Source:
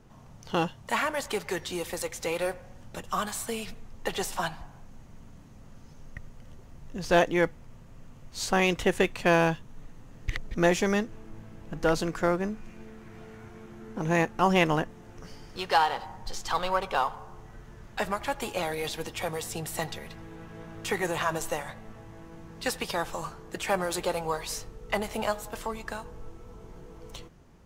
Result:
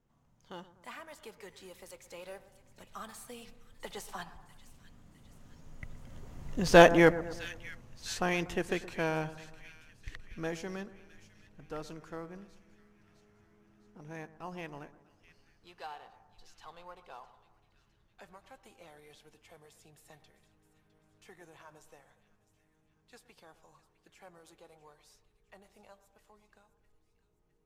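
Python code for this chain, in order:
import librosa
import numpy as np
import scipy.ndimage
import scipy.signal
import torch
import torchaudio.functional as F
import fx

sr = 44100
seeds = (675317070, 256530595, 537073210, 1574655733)

y = fx.doppler_pass(x, sr, speed_mps=19, closest_m=7.9, pass_at_s=6.71)
y = fx.echo_split(y, sr, split_hz=1700.0, low_ms=120, high_ms=658, feedback_pct=52, wet_db=-15.5)
y = F.gain(torch.from_numpy(y), 4.5).numpy()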